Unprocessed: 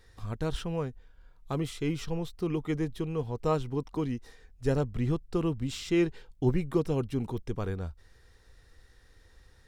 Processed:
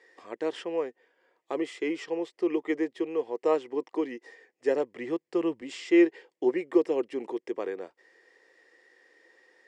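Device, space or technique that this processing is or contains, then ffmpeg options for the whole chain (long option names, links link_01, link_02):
phone speaker on a table: -filter_complex "[0:a]highpass=frequency=340:width=0.5412,highpass=frequency=340:width=1.3066,equalizer=frequency=340:width_type=q:width=4:gain=7,equalizer=frequency=520:width_type=q:width=4:gain=4,equalizer=frequency=1400:width_type=q:width=4:gain=-9,equalizer=frequency=1900:width_type=q:width=4:gain=9,equalizer=frequency=3900:width_type=q:width=4:gain=-10,equalizer=frequency=6000:width_type=q:width=4:gain=-7,lowpass=frequency=7200:width=0.5412,lowpass=frequency=7200:width=1.3066,asettb=1/sr,asplit=3[link_01][link_02][link_03];[link_01]atrim=end=4.654[link_04];[link_02]atrim=start=4.65:end=5.62,asetpts=PTS-STARTPTS,afade=type=in:duration=0.004:curve=qsin,afade=type=out:start_time=0.966:duration=0.004:curve=qsin,asubboost=boost=12:cutoff=160[link_05];[link_03]atrim=start=5.616[link_06];[link_04][link_05]acrossfade=duration=0.004:curve1=hsin:curve2=qsin[link_07];[link_07][link_06]acrossfade=duration=0.004:curve1=qsin:curve2=hsin,volume=2dB"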